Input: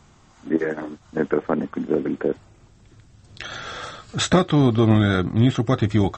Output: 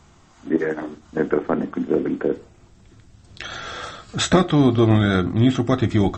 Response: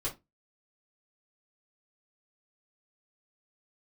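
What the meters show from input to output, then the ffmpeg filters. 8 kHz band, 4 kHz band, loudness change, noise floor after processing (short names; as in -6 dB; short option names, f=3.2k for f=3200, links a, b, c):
+1.0 dB, +1.0 dB, +1.0 dB, -52 dBFS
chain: -filter_complex "[0:a]asplit=2[a][b];[1:a]atrim=start_sample=2205,asetrate=27342,aresample=44100[c];[b][c]afir=irnorm=-1:irlink=0,volume=-17.5dB[d];[a][d]amix=inputs=2:normalize=0"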